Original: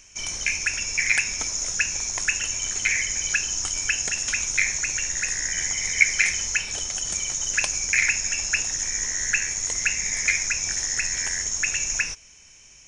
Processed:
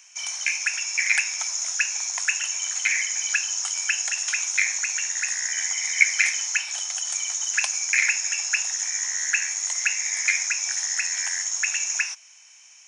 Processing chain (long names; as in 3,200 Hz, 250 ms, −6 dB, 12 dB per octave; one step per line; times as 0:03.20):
Butterworth high-pass 690 Hz 48 dB per octave